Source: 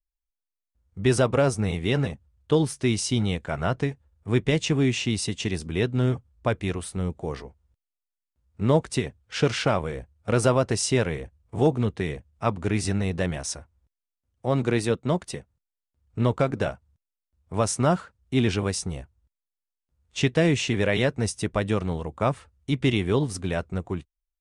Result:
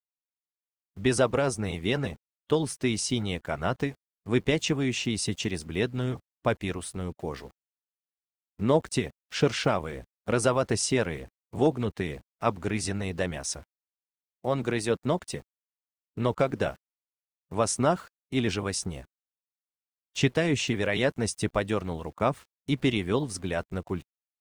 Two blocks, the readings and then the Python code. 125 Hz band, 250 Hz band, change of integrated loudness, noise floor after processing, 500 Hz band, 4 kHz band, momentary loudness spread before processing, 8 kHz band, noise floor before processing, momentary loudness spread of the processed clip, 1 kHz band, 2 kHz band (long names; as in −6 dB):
−6.0 dB, −3.0 dB, −3.0 dB, below −85 dBFS, −2.5 dB, −1.5 dB, 11 LU, −1.0 dB, below −85 dBFS, 11 LU, −1.5 dB, −1.5 dB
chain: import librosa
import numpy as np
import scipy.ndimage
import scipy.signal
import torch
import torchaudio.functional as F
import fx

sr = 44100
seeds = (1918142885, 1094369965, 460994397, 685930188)

y = np.where(np.abs(x) >= 10.0 ** (-48.0 / 20.0), x, 0.0)
y = fx.hpss(y, sr, part='percussive', gain_db=7)
y = y * 10.0 ** (-7.5 / 20.0)